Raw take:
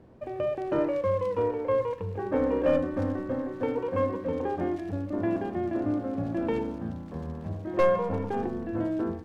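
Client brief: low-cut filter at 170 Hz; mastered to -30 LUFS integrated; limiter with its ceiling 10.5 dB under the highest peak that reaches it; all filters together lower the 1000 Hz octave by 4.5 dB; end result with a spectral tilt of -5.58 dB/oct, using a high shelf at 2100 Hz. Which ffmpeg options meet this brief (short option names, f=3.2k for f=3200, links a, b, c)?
-af "highpass=170,equalizer=f=1k:t=o:g=-4,highshelf=f=2.1k:g=-7.5,volume=4dB,alimiter=limit=-21.5dB:level=0:latency=1"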